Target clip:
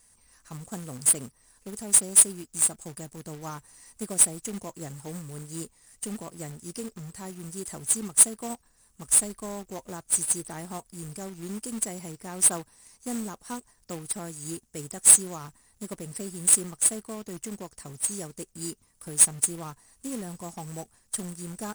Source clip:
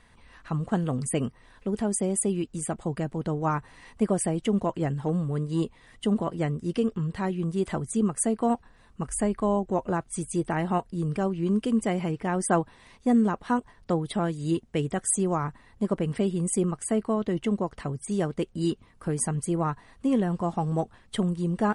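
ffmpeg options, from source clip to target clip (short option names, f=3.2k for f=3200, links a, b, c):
-af "aexciter=amount=9.4:drive=8.8:freq=5.2k,acrusher=bits=2:mode=log:mix=0:aa=0.000001,volume=-12dB"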